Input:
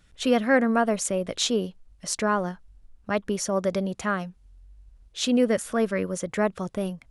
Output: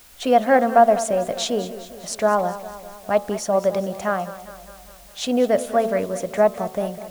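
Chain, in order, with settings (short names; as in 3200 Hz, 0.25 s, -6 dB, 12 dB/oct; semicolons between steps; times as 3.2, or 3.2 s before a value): bell 710 Hz +14.5 dB 0.72 oct; de-hum 74.98 Hz, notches 18; requantised 8-bit, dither triangular; warbling echo 0.203 s, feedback 60%, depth 73 cents, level -14.5 dB; gain -1 dB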